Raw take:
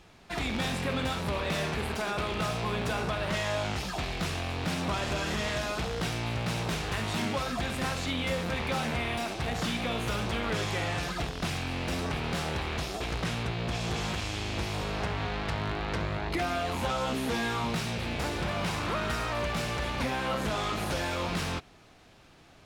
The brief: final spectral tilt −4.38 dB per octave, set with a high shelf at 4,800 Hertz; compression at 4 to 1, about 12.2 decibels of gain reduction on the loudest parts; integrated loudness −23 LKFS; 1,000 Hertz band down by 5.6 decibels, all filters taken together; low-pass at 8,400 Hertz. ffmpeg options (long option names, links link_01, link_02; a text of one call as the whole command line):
ffmpeg -i in.wav -af "lowpass=8400,equalizer=frequency=1000:width_type=o:gain=-8,highshelf=frequency=4800:gain=4,acompressor=threshold=-43dB:ratio=4,volume=20.5dB" out.wav